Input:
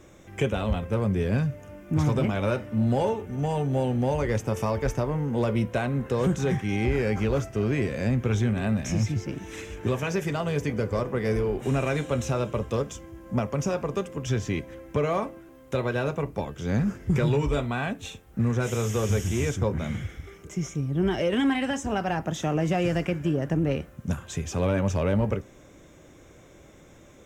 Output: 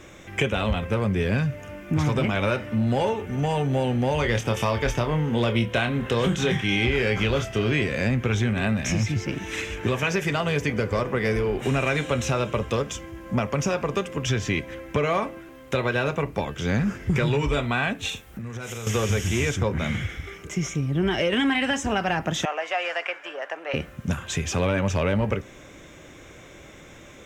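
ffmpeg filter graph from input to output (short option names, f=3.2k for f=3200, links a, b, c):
-filter_complex "[0:a]asettb=1/sr,asplit=3[a][b][c];[a]atrim=end=4.144[d];[b]atrim=start=4.14:end=7.84,asetpts=PTS-STARTPTS,afade=t=in:d=0.004:c=qsin,afade=t=out:st=3.696:d=0.004:c=qsin,equalizer=f=3.3k:w=3.3:g=8.5,asplit=2[e][f];[f]adelay=26,volume=-8dB[g];[e][g]amix=inputs=2:normalize=0,atrim=end_sample=163170[h];[c]atrim=start=7.836[i];[d][h]acrossfade=d=0.004:c1=hsin:c2=qsin[j];[j][i]acrossfade=d=0.004:c1=qsin:c2=hsin,asettb=1/sr,asplit=3[k][l][m];[k]atrim=end=18.094[n];[l]atrim=start=18.09:end=18.87,asetpts=PTS-STARTPTS,afade=t=in:d=0.004:c=qsin,afade=t=out:st=0.776:d=0.004:c=qsin,highshelf=f=7.5k:g=8.5,acompressor=threshold=-36dB:ratio=8:attack=3.2:release=140:knee=1:detection=peak,asplit=2[o][p];[p]adelay=44,volume=-12dB[q];[o][q]amix=inputs=2:normalize=0,atrim=end_sample=34398[r];[m]atrim=start=18.866[s];[n][r]acrossfade=d=0.004:c1=hsin:c2=qsin[t];[t][s]acrossfade=d=0.004:c1=qsin:c2=hsin,asettb=1/sr,asplit=3[u][v][w];[u]atrim=end=22.454[x];[v]atrim=start=22.45:end=23.74,asetpts=PTS-STARTPTS,afade=t=in:d=0.004:c=qsin,afade=t=out:st=1.286:d=0.004:c=qsin,highpass=f=630:w=0.5412,highpass=f=630:w=1.3066,aemphasis=mode=reproduction:type=75kf[y];[w]atrim=start=23.736[z];[x][y]acrossfade=d=0.004:c1=hsin:c2=qsin[aa];[aa][z]acrossfade=d=0.004:c1=qsin:c2=hsin,equalizer=f=2.5k:t=o:w=2.1:g=8,acompressor=threshold=-26dB:ratio=2,volume=4dB"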